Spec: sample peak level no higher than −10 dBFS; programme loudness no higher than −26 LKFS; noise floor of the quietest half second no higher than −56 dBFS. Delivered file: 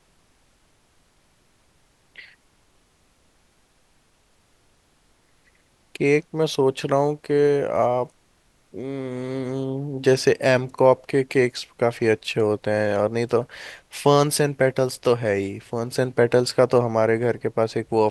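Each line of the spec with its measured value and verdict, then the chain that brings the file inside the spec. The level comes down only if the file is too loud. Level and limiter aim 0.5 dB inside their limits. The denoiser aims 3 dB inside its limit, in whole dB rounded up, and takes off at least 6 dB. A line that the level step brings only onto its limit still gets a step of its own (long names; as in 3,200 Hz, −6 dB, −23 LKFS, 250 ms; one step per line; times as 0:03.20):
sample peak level −3.5 dBFS: out of spec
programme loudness −21.5 LKFS: out of spec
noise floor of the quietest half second −62 dBFS: in spec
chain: level −5 dB
brickwall limiter −10.5 dBFS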